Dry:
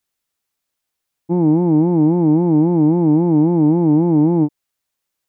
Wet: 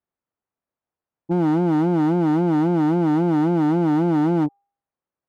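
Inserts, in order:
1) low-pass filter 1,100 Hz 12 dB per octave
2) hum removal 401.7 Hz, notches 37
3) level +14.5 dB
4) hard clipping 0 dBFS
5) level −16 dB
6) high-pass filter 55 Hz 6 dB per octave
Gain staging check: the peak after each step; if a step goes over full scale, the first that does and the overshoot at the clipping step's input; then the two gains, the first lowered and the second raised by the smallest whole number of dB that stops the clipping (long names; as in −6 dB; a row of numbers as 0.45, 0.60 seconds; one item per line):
−6.0, −6.0, +8.5, 0.0, −16.0, −13.5 dBFS
step 3, 8.5 dB
step 3 +5.5 dB, step 5 −7 dB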